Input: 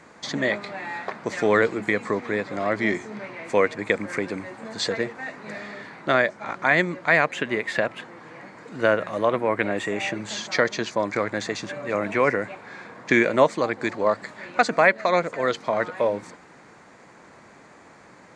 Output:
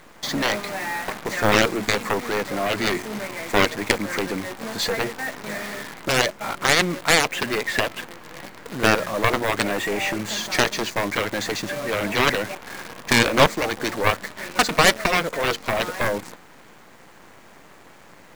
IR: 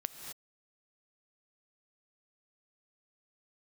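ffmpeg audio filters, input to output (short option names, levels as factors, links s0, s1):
-af "acrusher=bits=7:dc=4:mix=0:aa=0.000001,aeval=exprs='0.562*(cos(1*acos(clip(val(0)/0.562,-1,1)))-cos(1*PI/2))+0.0794*(cos(4*acos(clip(val(0)/0.562,-1,1)))-cos(4*PI/2))+0.224*(cos(7*acos(clip(val(0)/0.562,-1,1)))-cos(7*PI/2))':c=same"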